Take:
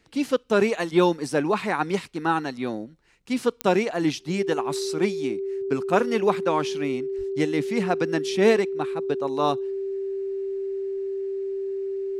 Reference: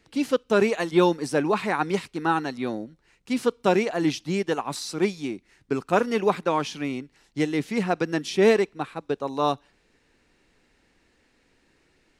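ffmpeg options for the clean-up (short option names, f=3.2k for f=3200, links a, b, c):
-filter_complex "[0:a]adeclick=t=4,bandreject=f=390:w=30,asplit=3[a][b][c];[a]afade=t=out:st=7.17:d=0.02[d];[b]highpass=f=140:w=0.5412,highpass=f=140:w=1.3066,afade=t=in:st=7.17:d=0.02,afade=t=out:st=7.29:d=0.02[e];[c]afade=t=in:st=7.29:d=0.02[f];[d][e][f]amix=inputs=3:normalize=0"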